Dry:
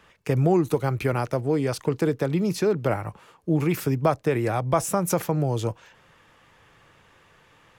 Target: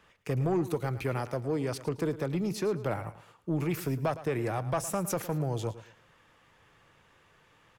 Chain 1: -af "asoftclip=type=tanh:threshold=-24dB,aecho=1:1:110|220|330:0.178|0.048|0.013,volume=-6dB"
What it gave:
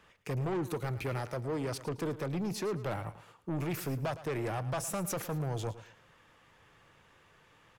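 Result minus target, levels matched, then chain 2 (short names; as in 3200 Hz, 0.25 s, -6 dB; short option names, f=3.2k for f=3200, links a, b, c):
soft clip: distortion +9 dB
-af "asoftclip=type=tanh:threshold=-15dB,aecho=1:1:110|220|330:0.178|0.048|0.013,volume=-6dB"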